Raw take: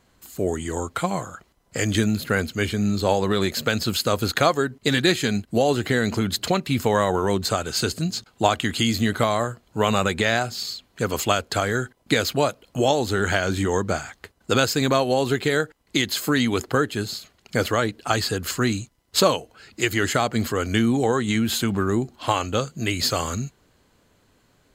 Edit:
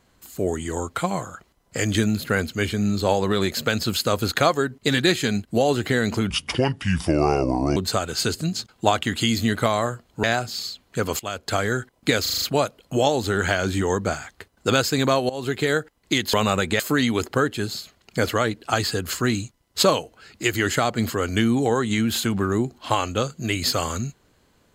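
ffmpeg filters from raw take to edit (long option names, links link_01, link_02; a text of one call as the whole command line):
ffmpeg -i in.wav -filter_complex "[0:a]asplit=13[link_01][link_02][link_03][link_04][link_05][link_06][link_07][link_08][link_09][link_10][link_11][link_12][link_13];[link_01]atrim=end=6.304[link_14];[link_02]atrim=start=6.3:end=7.34,asetpts=PTS-STARTPTS,asetrate=31311,aresample=44100,atrim=end_sample=64597,asetpts=PTS-STARTPTS[link_15];[link_03]atrim=start=7.336:end=9.812[link_16];[link_04]atrim=start=10.268:end=11.23,asetpts=PTS-STARTPTS,afade=type=out:start_time=0.958:duration=0.004:curve=hsin:silence=0.112202[link_17];[link_05]atrim=start=11.23:end=12.292,asetpts=PTS-STARTPTS,afade=type=in:duration=0.37:silence=0.112202[link_18];[link_06]atrim=start=12.248:end=12.292[link_19];[link_07]atrim=start=12.248:end=12.292[link_20];[link_08]atrim=start=12.248:end=12.292[link_21];[link_09]atrim=start=12.248:end=12.292[link_22];[link_10]atrim=start=12.248:end=15.13,asetpts=PTS-STARTPTS,afade=type=out:start_time=2.878:duration=0.004:curve=hsin:silence=0.125893[link_23];[link_11]atrim=start=15.13:end=16.172,asetpts=PTS-STARTPTS,afade=type=in:duration=0.43:curve=qsin:silence=0.125893[link_24];[link_12]atrim=start=9.808:end=10.272[link_25];[link_13]atrim=start=16.168[link_26];[link_14][link_15]acrossfade=duration=0.004:curve1=hsin:curve2=hsin[link_27];[link_27][link_16]acrossfade=duration=0.004:curve1=hsin:curve2=hsin[link_28];[link_17][link_18]concat=n=2:v=0:a=1[link_29];[link_28][link_29]acrossfade=duration=0.004:curve1=hsin:curve2=hsin[link_30];[link_30][link_19]acrossfade=duration=0.004:curve1=hsin:curve2=hsin[link_31];[link_31][link_20]acrossfade=duration=0.004:curve1=hsin:curve2=hsin[link_32];[link_32][link_21]acrossfade=duration=0.004:curve1=hsin:curve2=hsin[link_33];[link_33][link_22]acrossfade=duration=0.004:curve1=hsin:curve2=hsin[link_34];[link_23][link_24]concat=n=2:v=0:a=1[link_35];[link_34][link_35]acrossfade=duration=0.004:curve1=hsin:curve2=hsin[link_36];[link_36][link_25]acrossfade=duration=0.004:curve1=hsin:curve2=hsin[link_37];[link_37][link_26]acrossfade=duration=0.004:curve1=hsin:curve2=hsin" out.wav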